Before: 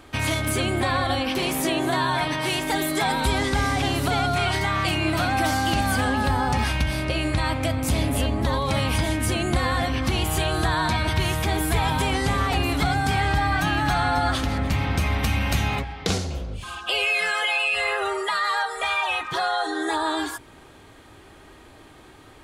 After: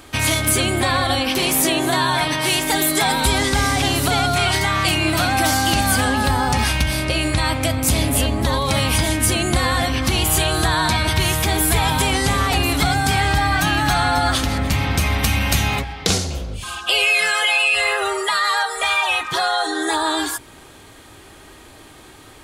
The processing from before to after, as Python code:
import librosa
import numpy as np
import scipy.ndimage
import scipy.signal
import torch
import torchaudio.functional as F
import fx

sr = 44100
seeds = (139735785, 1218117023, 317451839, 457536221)

y = fx.high_shelf(x, sr, hz=4000.0, db=9.5)
y = F.gain(torch.from_numpy(y), 3.5).numpy()